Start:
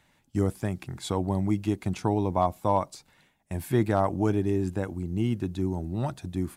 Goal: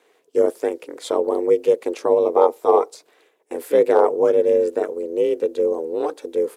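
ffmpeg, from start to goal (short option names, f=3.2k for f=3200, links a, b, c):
-af "aeval=exprs='val(0)*sin(2*PI*160*n/s)':c=same,highpass=f=450:t=q:w=4.9,volume=5.5dB"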